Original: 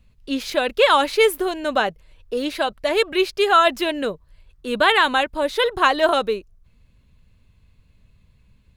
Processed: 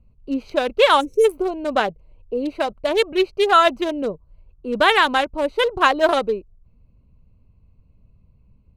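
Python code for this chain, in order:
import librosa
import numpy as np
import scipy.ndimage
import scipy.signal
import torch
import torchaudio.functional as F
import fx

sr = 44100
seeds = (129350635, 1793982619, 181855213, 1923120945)

y = fx.wiener(x, sr, points=25)
y = fx.spec_box(y, sr, start_s=1.0, length_s=0.25, low_hz=550.0, high_hz=5300.0, gain_db=-28)
y = fx.peak_eq(y, sr, hz=1400.0, db=-8.5, octaves=0.31, at=(1.87, 2.52))
y = y * 10.0 ** (1.5 / 20.0)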